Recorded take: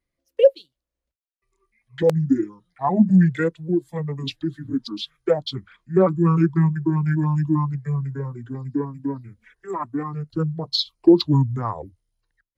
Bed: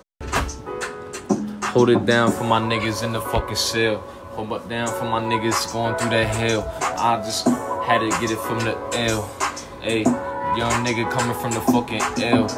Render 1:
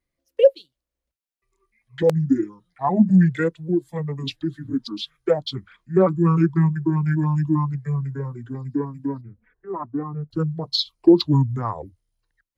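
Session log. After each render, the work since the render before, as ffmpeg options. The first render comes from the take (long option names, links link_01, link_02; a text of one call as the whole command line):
ffmpeg -i in.wav -filter_complex "[0:a]asettb=1/sr,asplit=3[link_01][link_02][link_03];[link_01]atrim=end=9.214[link_04];[link_02]atrim=start=9.21:end=10.31,asetpts=PTS-STARTPTS,afade=type=in:duration=0.004:curve=qsin,afade=type=out:start_time=1.096:duration=0.004:curve=qsin,lowpass=1000[link_05];[link_03]atrim=start=10.306[link_06];[link_04][link_05]acrossfade=duration=0.004:curve1=hsin:curve2=qsin[link_07];[link_07][link_06]acrossfade=duration=0.004:curve1=qsin:curve2=hsin" out.wav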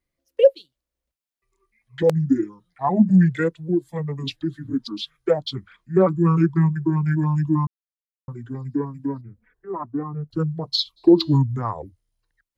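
ffmpeg -i in.wav -filter_complex "[0:a]asplit=3[link_01][link_02][link_03];[link_01]afade=type=out:start_time=10.96:duration=0.02[link_04];[link_02]bandreject=frequency=326.6:width_type=h:width=4,bandreject=frequency=653.2:width_type=h:width=4,bandreject=frequency=979.8:width_type=h:width=4,bandreject=frequency=1306.4:width_type=h:width=4,bandreject=frequency=1633:width_type=h:width=4,bandreject=frequency=1959.6:width_type=h:width=4,bandreject=frequency=2286.2:width_type=h:width=4,bandreject=frequency=2612.8:width_type=h:width=4,bandreject=frequency=2939.4:width_type=h:width=4,bandreject=frequency=3266:width_type=h:width=4,bandreject=frequency=3592.6:width_type=h:width=4,bandreject=frequency=3919.2:width_type=h:width=4,bandreject=frequency=4245.8:width_type=h:width=4,bandreject=frequency=4572.4:width_type=h:width=4,bandreject=frequency=4899:width_type=h:width=4,bandreject=frequency=5225.6:width_type=h:width=4,bandreject=frequency=5552.2:width_type=h:width=4,bandreject=frequency=5878.8:width_type=h:width=4,bandreject=frequency=6205.4:width_type=h:width=4,bandreject=frequency=6532:width_type=h:width=4,bandreject=frequency=6858.6:width_type=h:width=4,bandreject=frequency=7185.2:width_type=h:width=4,bandreject=frequency=7511.8:width_type=h:width=4,bandreject=frequency=7838.4:width_type=h:width=4,bandreject=frequency=8165:width_type=h:width=4,bandreject=frequency=8491.6:width_type=h:width=4,bandreject=frequency=8818.2:width_type=h:width=4,bandreject=frequency=9144.8:width_type=h:width=4,bandreject=frequency=9471.4:width_type=h:width=4,bandreject=frequency=9798:width_type=h:width=4,bandreject=frequency=10124.6:width_type=h:width=4,bandreject=frequency=10451.2:width_type=h:width=4,bandreject=frequency=10777.8:width_type=h:width=4,bandreject=frequency=11104.4:width_type=h:width=4,bandreject=frequency=11431:width_type=h:width=4,bandreject=frequency=11757.6:width_type=h:width=4,bandreject=frequency=12084.2:width_type=h:width=4,bandreject=frequency=12410.8:width_type=h:width=4,afade=type=in:start_time=10.96:duration=0.02,afade=type=out:start_time=11.37:duration=0.02[link_05];[link_03]afade=type=in:start_time=11.37:duration=0.02[link_06];[link_04][link_05][link_06]amix=inputs=3:normalize=0,asplit=3[link_07][link_08][link_09];[link_07]atrim=end=7.67,asetpts=PTS-STARTPTS,afade=type=out:start_time=7.666:duration=0.004:curve=hsin[link_10];[link_08]atrim=start=7.67:end=8.28,asetpts=PTS-STARTPTS,volume=0[link_11];[link_09]atrim=start=8.28,asetpts=PTS-STARTPTS,afade=type=in:duration=0.004:curve=hsin[link_12];[link_10][link_11][link_12]concat=n=3:v=0:a=1" out.wav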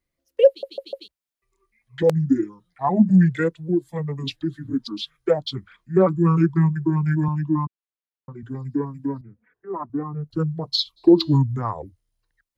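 ffmpeg -i in.wav -filter_complex "[0:a]asettb=1/sr,asplit=3[link_01][link_02][link_03];[link_01]atrim=end=7.284[link_04];[link_02]atrim=start=7.28:end=8.43,asetpts=PTS-STARTPTS,afade=type=in:duration=0.004:curve=qsin,afade=type=out:start_time=1.146:duration=0.004:curve=qsin,highpass=160,lowpass=3600[link_05];[link_03]atrim=start=8.426[link_06];[link_04][link_05]acrossfade=duration=0.004:curve1=hsin:curve2=qsin[link_07];[link_07][link_06]acrossfade=duration=0.004:curve1=qsin:curve2=hsin,asettb=1/sr,asplit=3[link_08][link_09][link_10];[link_08]atrim=end=9.214[link_11];[link_09]atrim=start=9.21:end=9.9,asetpts=PTS-STARTPTS,afade=type=in:duration=0.004:curve=qsin,afade=type=out:start_time=0.686:duration=0.004:curve=qsin,highpass=140,lowpass=2600[link_12];[link_10]atrim=start=9.896[link_13];[link_11][link_12]acrossfade=duration=0.004:curve1=hsin:curve2=qsin[link_14];[link_14][link_13]acrossfade=duration=0.004:curve1=qsin:curve2=hsin,asplit=5[link_15][link_16][link_17][link_18][link_19];[link_15]atrim=end=0.632[link_20];[link_16]atrim=start=0.478:end=0.632[link_21];[link_17]atrim=start=0.478:end=0.632[link_22];[link_18]atrim=start=0.478:end=0.632[link_23];[link_19]atrim=start=1.078[link_24];[link_20][link_21]acrossfade=duration=0.004:curve1=hsin:curve2=hsin[link_25];[link_25][link_22]acrossfade=duration=0.004:curve1=hsin:curve2=hsin[link_26];[link_26][link_23]acrossfade=duration=0.004:curve1=hsin:curve2=hsin[link_27];[link_27][link_24]acrossfade=duration=0.004:curve1=hsin:curve2=hsin" out.wav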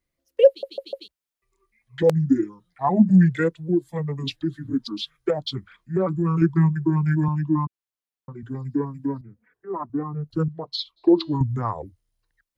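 ffmpeg -i in.wav -filter_complex "[0:a]asettb=1/sr,asplit=3[link_01][link_02][link_03];[link_01]atrim=end=5.304[link_04];[link_02]atrim=start=5.3:end=6.42,asetpts=PTS-STARTPTS,afade=type=in:duration=0.004:curve=qsin,afade=type=out:start_time=1.116:duration=0.004:curve=qsin,acompressor=threshold=-20dB:ratio=2.5:attack=3.2:release=140:knee=1:detection=peak[link_05];[link_03]atrim=start=6.416[link_06];[link_04][link_05]acrossfade=duration=0.004:curve1=hsin:curve2=qsin[link_07];[link_07][link_06]acrossfade=duration=0.004:curve1=qsin:curve2=hsin,asettb=1/sr,asplit=3[link_08][link_09][link_10];[link_08]atrim=end=10.484[link_11];[link_09]atrim=start=10.48:end=11.41,asetpts=PTS-STARTPTS,afade=type=in:duration=0.004:curve=qsin,afade=type=out:start_time=0.926:duration=0.004:curve=qsin,bass=frequency=250:gain=-12,treble=frequency=4000:gain=-13[link_12];[link_10]atrim=start=11.406[link_13];[link_11][link_12]acrossfade=duration=0.004:curve1=hsin:curve2=qsin[link_14];[link_14][link_13]acrossfade=duration=0.004:curve1=qsin:curve2=hsin" out.wav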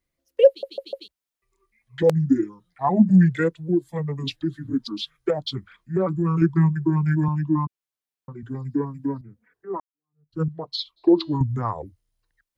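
ffmpeg -i in.wav -filter_complex "[0:a]asplit=2[link_01][link_02];[link_01]atrim=end=9.8,asetpts=PTS-STARTPTS,afade=type=out:start_time=9.796:duration=0.004:curve=hsin[link_03];[link_02]atrim=start=9.8,asetpts=PTS-STARTPTS,afade=type=in:duration=0.62:curve=exp[link_04];[link_03][link_04]concat=n=2:v=0:a=1" out.wav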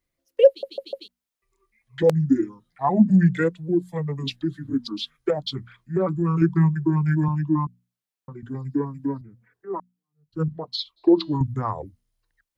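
ffmpeg -i in.wav -af "bandreject=frequency=60:width_type=h:width=6,bandreject=frequency=120:width_type=h:width=6,bandreject=frequency=180:width_type=h:width=6,bandreject=frequency=240:width_type=h:width=6" out.wav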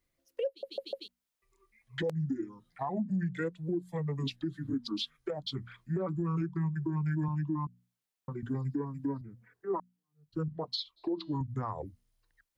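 ffmpeg -i in.wav -af "acompressor=threshold=-29dB:ratio=2,alimiter=level_in=1dB:limit=-24dB:level=0:latency=1:release=363,volume=-1dB" out.wav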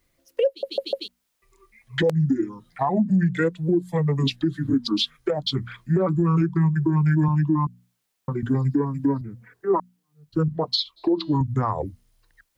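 ffmpeg -i in.wav -af "volume=12dB" out.wav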